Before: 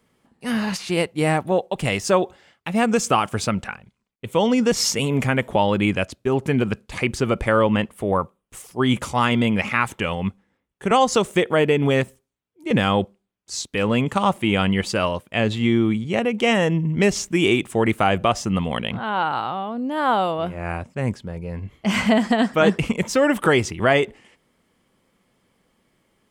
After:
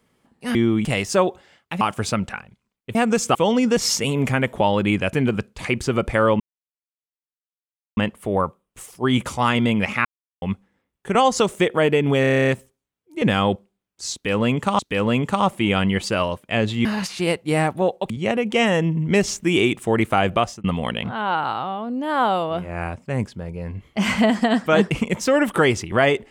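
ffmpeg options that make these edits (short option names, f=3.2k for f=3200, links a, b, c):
-filter_complex "[0:a]asplit=23[a][b][c][d][e][f][g][h][i][j][k][l][m][n][o][p][q][r][s][t][u][v][w];[a]atrim=end=0.552[x];[b]atrim=start=15.678:end=15.982[y];[c]atrim=start=1.798:end=2.762[z];[d]atrim=start=3.158:end=4.302[aa];[e]atrim=start=2.758:end=3.162[ab];[f]atrim=start=4.298:end=6.082[ac];[g]atrim=start=6.458:end=7.73,asetpts=PTS-STARTPTS,afade=t=out:st=1.268:d=0.004:c=hsin,apad=pad_dur=1.57[ad];[h]atrim=start=7.73:end=9.81,asetpts=PTS-STARTPTS,afade=t=in:d=0.004:c=hsin,afade=t=out:st=2.076:d=0.004:c=hsin[ae];[i]atrim=start=9.81:end=10.18,asetpts=PTS-STARTPTS,volume=0[af];[j]atrim=start=10.18:end=12.002,asetpts=PTS-STARTPTS,afade=t=in:d=0.004:c=hsin[ag];[k]atrim=start=11.968:end=12.002[ah];[l]atrim=start=11.968:end=12.002[ai];[m]atrim=start=11.968:end=12.002[aj];[n]atrim=start=11.968:end=12.002[ak];[o]atrim=start=11.968:end=12.002[al];[p]atrim=start=11.968:end=12.002[am];[q]atrim=start=11.968:end=12.002[an];[r]atrim=start=11.968:end=12.002[ao];[s]atrim=start=11.968:end=14.282[ap];[t]atrim=start=13.618:end=15.682[aq];[u]atrim=start=0.548:end=1.802[ar];[v]atrim=start=15.978:end=18.52,asetpts=PTS-STARTPTS,afade=t=out:st=2.292:d=0.25[as];[w]atrim=start=18.52,asetpts=PTS-STARTPTS,afade=t=in:d=0.004:c=hsin[at];[x][y]acrossfade=d=0.004:c1=hsin:c2=hsin[au];[au][z]acrossfade=d=0.004:c1=hsin:c2=hsin[av];[av][aa]acrossfade=d=0.004:c1=hsin:c2=hsin[aw];[aw][ab]acrossfade=d=0.004:c1=hsin:c2=hsin[ax];[ax][ac]acrossfade=d=0.004:c1=hsin:c2=hsin[ay];[ad][ae][af][ag]concat=n=4:v=0:a=1[az];[ay][az]acrossfade=d=0.004:c1=hsin:c2=hsin[ba];[ba][ah]acrossfade=d=0.004:c1=hsin:c2=hsin[bb];[bb][ai]acrossfade=d=0.004:c1=hsin:c2=hsin[bc];[bc][aj]acrossfade=d=0.004:c1=hsin:c2=hsin[bd];[bd][ak]acrossfade=d=0.004:c1=hsin:c2=hsin[be];[be][al]acrossfade=d=0.004:c1=hsin:c2=hsin[bf];[bf][am]acrossfade=d=0.004:c1=hsin:c2=hsin[bg];[bg][an]acrossfade=d=0.004:c1=hsin:c2=hsin[bh];[bh][ao]acrossfade=d=0.004:c1=hsin:c2=hsin[bi];[bi][ap]acrossfade=d=0.004:c1=hsin:c2=hsin[bj];[bj][aq]acrossfade=d=0.004:c1=hsin:c2=hsin[bk];[bk][ar]acrossfade=d=0.004:c1=hsin:c2=hsin[bl];[as][at]concat=n=2:v=0:a=1[bm];[bl][bm]acrossfade=d=0.004:c1=hsin:c2=hsin"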